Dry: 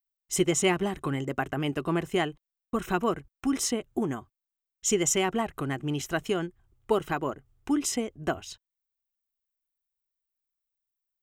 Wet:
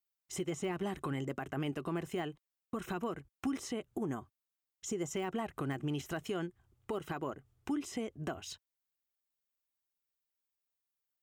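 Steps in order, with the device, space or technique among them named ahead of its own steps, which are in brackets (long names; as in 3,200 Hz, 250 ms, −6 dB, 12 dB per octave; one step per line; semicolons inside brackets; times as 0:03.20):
0:03.92–0:05.11: dynamic equaliser 2,800 Hz, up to −8 dB, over −47 dBFS, Q 0.9
podcast mastering chain (high-pass filter 63 Hz; de-essing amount 100%; downward compressor 3 to 1, threshold −33 dBFS, peak gain reduction 10.5 dB; brickwall limiter −27 dBFS, peak gain reduction 6.5 dB; MP3 112 kbit/s 48,000 Hz)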